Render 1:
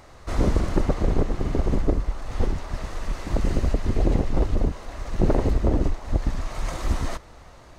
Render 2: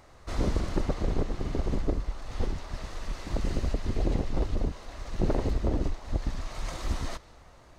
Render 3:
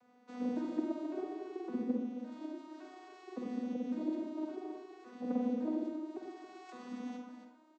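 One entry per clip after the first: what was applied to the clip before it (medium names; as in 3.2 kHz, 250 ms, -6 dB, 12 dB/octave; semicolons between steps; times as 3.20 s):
dynamic bell 4.2 kHz, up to +5 dB, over -55 dBFS, Q 0.96; trim -6.5 dB
vocoder on a broken chord major triad, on B3, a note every 560 ms; delay 271 ms -9.5 dB; reverberation RT60 0.55 s, pre-delay 42 ms, DRR 1.5 dB; trim -6.5 dB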